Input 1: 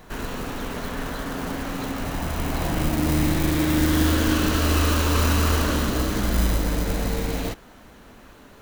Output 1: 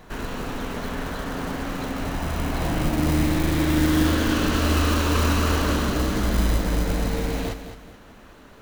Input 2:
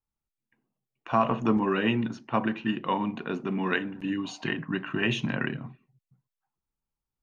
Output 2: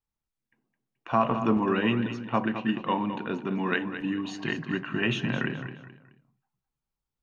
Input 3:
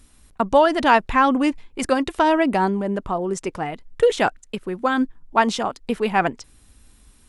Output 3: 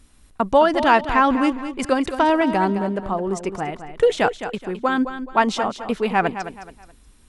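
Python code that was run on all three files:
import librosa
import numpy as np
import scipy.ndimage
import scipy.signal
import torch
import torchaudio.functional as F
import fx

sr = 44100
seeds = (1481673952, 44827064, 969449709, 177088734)

y = fx.high_shelf(x, sr, hz=7400.0, db=-5.5)
y = fx.echo_feedback(y, sr, ms=213, feedback_pct=32, wet_db=-10.5)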